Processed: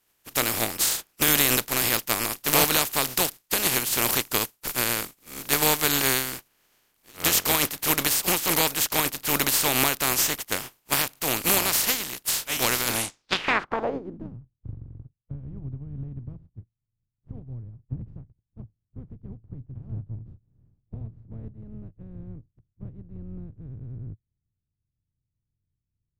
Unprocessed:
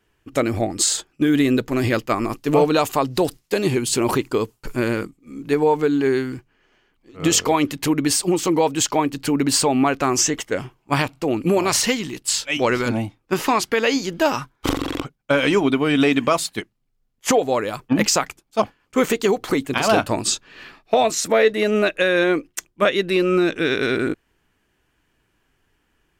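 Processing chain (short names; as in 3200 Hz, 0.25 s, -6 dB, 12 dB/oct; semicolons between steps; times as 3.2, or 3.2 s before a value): spectral contrast lowered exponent 0.29; low-pass sweep 14000 Hz -> 110 Hz, 12.93–14.41; gain -5.5 dB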